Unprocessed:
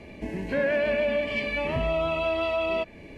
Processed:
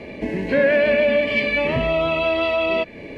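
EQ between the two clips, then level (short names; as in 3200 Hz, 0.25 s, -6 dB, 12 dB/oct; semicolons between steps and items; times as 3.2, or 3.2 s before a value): dynamic EQ 710 Hz, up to -4 dB, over -37 dBFS, Q 0.73; graphic EQ 125/250/500/1000/2000/4000 Hz +5/+6/+11/+4/+8/+7 dB; 0.0 dB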